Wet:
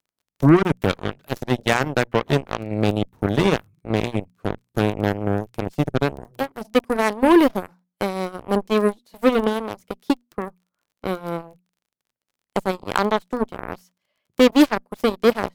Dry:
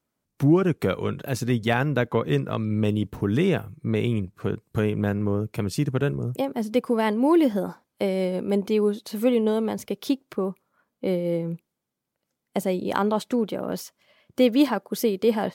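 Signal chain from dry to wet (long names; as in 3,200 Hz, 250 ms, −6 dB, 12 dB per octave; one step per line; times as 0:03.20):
surface crackle 31 per second −34 dBFS
mains-hum notches 60/120/180/240 Hz
harmonic generator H 7 −16 dB, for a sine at −8.5 dBFS
level +4.5 dB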